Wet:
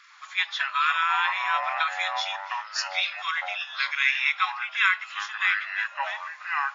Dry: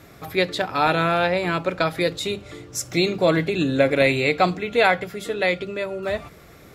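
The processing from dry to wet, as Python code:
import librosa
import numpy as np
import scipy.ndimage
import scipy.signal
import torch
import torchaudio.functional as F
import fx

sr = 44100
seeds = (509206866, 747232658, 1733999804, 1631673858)

y = fx.freq_compress(x, sr, knee_hz=2900.0, ratio=1.5)
y = fx.brickwall_bandpass(y, sr, low_hz=980.0, high_hz=7200.0)
y = fx.echo_pitch(y, sr, ms=102, semitones=-5, count=2, db_per_echo=-6.0)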